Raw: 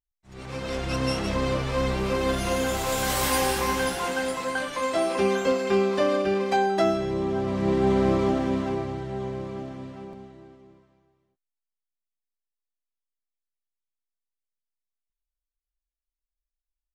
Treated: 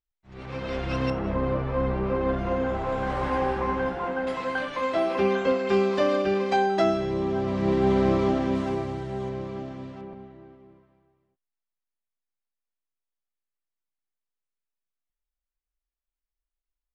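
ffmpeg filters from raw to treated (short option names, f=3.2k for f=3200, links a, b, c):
-af "asetnsamples=n=441:p=0,asendcmd='1.1 lowpass f 1400;4.27 lowpass f 3300;5.69 lowpass f 5900;8.55 lowpass f 12000;9.29 lowpass f 6000;10.01 lowpass f 2600',lowpass=3.3k"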